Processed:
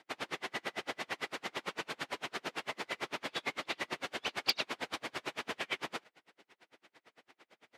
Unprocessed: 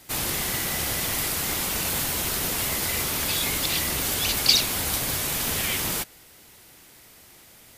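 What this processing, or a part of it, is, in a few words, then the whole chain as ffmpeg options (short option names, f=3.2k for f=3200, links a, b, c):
helicopter radio: -af "highpass=330,lowpass=2.7k,aeval=exprs='val(0)*pow(10,-38*(0.5-0.5*cos(2*PI*8.9*n/s))/20)':c=same,asoftclip=type=hard:threshold=-19.5dB"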